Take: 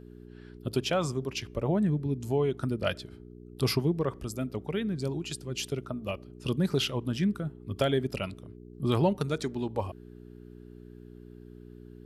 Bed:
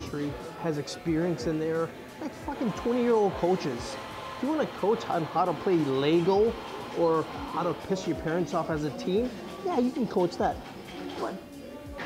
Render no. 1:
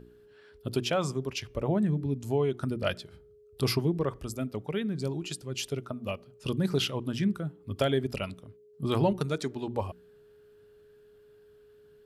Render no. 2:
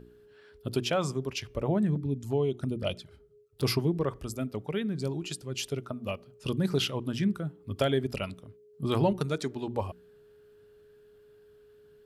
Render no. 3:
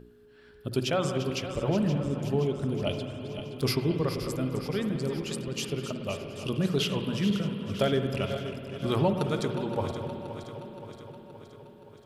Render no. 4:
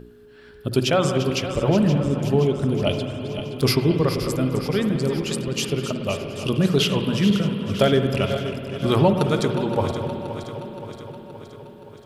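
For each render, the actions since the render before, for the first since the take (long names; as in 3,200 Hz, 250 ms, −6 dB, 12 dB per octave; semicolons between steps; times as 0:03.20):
hum removal 60 Hz, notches 6
0:01.95–0:03.64: flanger swept by the level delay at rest 10.3 ms, full sweep at −27 dBFS
feedback delay that plays each chunk backwards 261 ms, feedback 77%, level −10.5 dB; spring reverb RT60 2.9 s, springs 54 ms, chirp 55 ms, DRR 6.5 dB
level +8 dB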